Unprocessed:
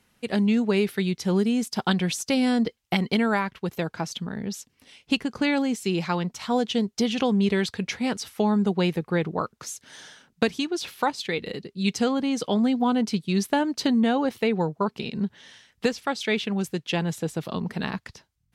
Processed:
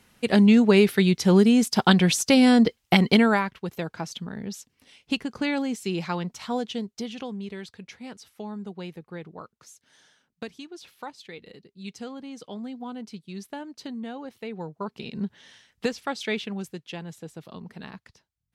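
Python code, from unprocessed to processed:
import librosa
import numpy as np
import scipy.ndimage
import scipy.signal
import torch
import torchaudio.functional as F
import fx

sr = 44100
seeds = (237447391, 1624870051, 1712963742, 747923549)

y = fx.gain(x, sr, db=fx.line((3.16, 5.5), (3.6, -3.0), (6.42, -3.0), (7.47, -14.0), (14.35, -14.0), (15.22, -3.0), (16.29, -3.0), (17.0, -11.5)))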